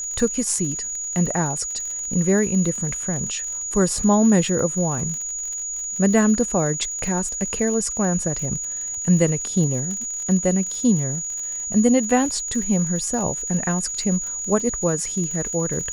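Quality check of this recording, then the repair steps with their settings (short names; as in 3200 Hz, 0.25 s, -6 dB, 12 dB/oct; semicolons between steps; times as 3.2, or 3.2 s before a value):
crackle 59/s -29 dBFS
tone 6800 Hz -26 dBFS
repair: de-click; notch 6800 Hz, Q 30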